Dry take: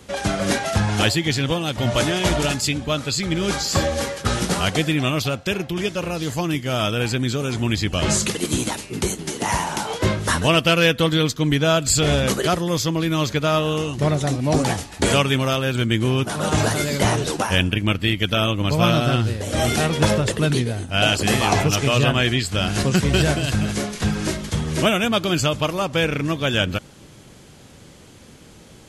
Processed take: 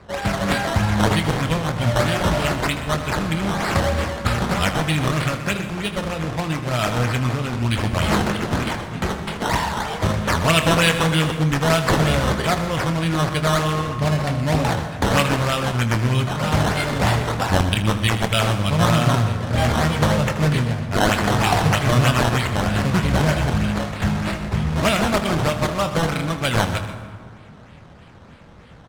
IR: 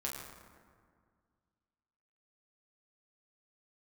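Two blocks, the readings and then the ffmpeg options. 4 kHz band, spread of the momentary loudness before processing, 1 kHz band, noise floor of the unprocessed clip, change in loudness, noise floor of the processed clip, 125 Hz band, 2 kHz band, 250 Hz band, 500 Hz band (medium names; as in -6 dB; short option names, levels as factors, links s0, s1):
-3.0 dB, 6 LU, +3.0 dB, -45 dBFS, 0.0 dB, -42 dBFS, +2.0 dB, +0.5 dB, 0.0 dB, -1.0 dB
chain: -filter_complex "[0:a]equalizer=f=360:t=o:w=0.93:g=-10,acrusher=samples=13:mix=1:aa=0.000001:lfo=1:lforange=13:lforate=3.2,adynamicsmooth=sensitivity=3:basefreq=5200,aecho=1:1:25|78:0.282|0.211,asplit=2[s0][s1];[1:a]atrim=start_sample=2205,adelay=124[s2];[s1][s2]afir=irnorm=-1:irlink=0,volume=0.282[s3];[s0][s3]amix=inputs=2:normalize=0,volume=1.19"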